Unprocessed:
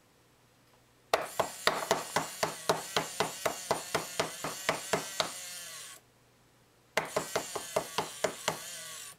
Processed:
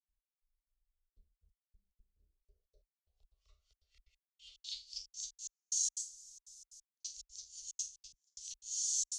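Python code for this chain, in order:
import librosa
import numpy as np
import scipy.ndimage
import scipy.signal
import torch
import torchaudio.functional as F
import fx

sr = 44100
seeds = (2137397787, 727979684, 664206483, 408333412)

y = fx.env_lowpass_down(x, sr, base_hz=310.0, full_db=-28.5)
y = fx.highpass(y, sr, hz=91.0, slope=6)
y = fx.rev_schroeder(y, sr, rt60_s=0.31, comb_ms=28, drr_db=-9.0)
y = fx.filter_sweep_lowpass(y, sr, from_hz=230.0, to_hz=6500.0, start_s=1.93, end_s=5.21, q=4.6)
y = fx.step_gate(y, sr, bpm=181, pattern='.x...xx.xxxxx.xx', floor_db=-60.0, edge_ms=4.5)
y = scipy.signal.sosfilt(scipy.signal.cheby2(4, 60, [130.0, 1800.0], 'bandstop', fs=sr, output='sos'), y)
y = fx.band_squash(y, sr, depth_pct=70, at=(8.13, 8.71))
y = F.gain(torch.from_numpy(y), 2.0).numpy()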